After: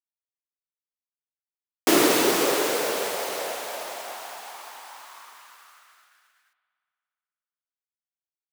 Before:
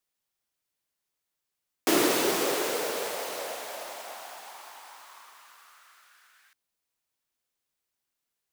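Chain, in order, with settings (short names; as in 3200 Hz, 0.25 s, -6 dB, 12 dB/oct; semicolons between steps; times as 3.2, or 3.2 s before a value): expander -52 dBFS; spring tank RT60 2.2 s, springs 56 ms, chirp 35 ms, DRR 11.5 dB; gain +4.5 dB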